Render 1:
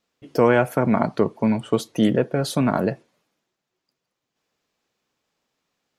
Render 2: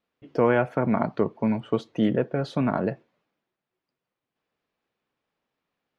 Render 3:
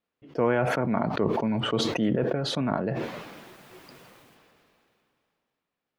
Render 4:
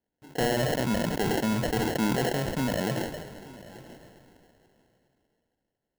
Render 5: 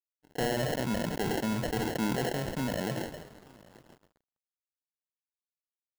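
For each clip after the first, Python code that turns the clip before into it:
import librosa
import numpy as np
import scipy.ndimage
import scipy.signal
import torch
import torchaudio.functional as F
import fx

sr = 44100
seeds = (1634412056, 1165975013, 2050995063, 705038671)

y1 = scipy.signal.sosfilt(scipy.signal.butter(2, 3000.0, 'lowpass', fs=sr, output='sos'), x)
y1 = y1 * 10.0 ** (-4.0 / 20.0)
y2 = fx.sustainer(y1, sr, db_per_s=21.0)
y2 = y2 * 10.0 ** (-4.0 / 20.0)
y3 = fx.sample_hold(y2, sr, seeds[0], rate_hz=1200.0, jitter_pct=0)
y3 = np.clip(y3, -10.0 ** (-20.0 / 20.0), 10.0 ** (-20.0 / 20.0))
y3 = y3 + 10.0 ** (-19.5 / 20.0) * np.pad(y3, (int(888 * sr / 1000.0), 0))[:len(y3)]
y4 = np.sign(y3) * np.maximum(np.abs(y3) - 10.0 ** (-47.5 / 20.0), 0.0)
y4 = y4 * 10.0 ** (-3.5 / 20.0)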